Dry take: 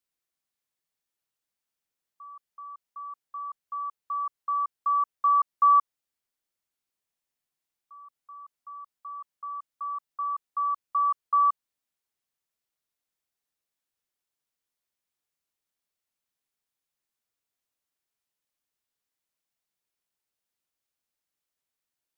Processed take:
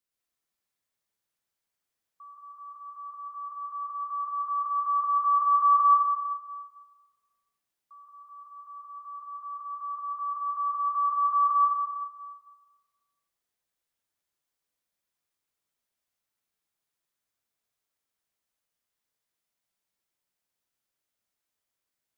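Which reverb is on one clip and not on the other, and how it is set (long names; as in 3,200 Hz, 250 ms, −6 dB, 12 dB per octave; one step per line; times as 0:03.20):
dense smooth reverb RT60 1.5 s, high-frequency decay 0.65×, pre-delay 100 ms, DRR −3 dB
level −2.5 dB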